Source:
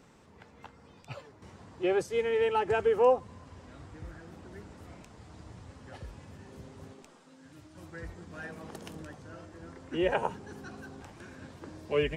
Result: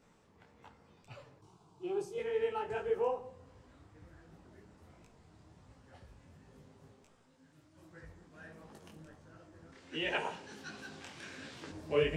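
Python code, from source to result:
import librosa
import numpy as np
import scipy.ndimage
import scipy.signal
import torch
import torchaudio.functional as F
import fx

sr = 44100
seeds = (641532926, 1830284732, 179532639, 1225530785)

y = fx.weighting(x, sr, curve='D', at=(9.72, 11.7))
y = fx.room_shoebox(y, sr, seeds[0], volume_m3=180.0, walls='mixed', distance_m=0.32)
y = fx.rider(y, sr, range_db=5, speed_s=2.0)
y = fx.fixed_phaser(y, sr, hz=370.0, stages=8, at=(1.39, 2.18))
y = fx.detune_double(y, sr, cents=48)
y = y * 10.0 ** (-3.5 / 20.0)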